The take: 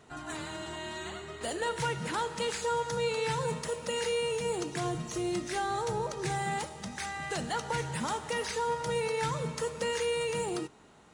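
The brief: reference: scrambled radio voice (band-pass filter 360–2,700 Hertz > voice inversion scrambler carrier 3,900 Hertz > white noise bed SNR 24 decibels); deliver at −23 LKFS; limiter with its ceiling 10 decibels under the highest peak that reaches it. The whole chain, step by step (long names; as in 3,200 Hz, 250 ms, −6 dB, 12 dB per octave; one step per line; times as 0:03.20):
brickwall limiter −30.5 dBFS
band-pass filter 360–2,700 Hz
voice inversion scrambler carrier 3,900 Hz
white noise bed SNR 24 dB
level +15 dB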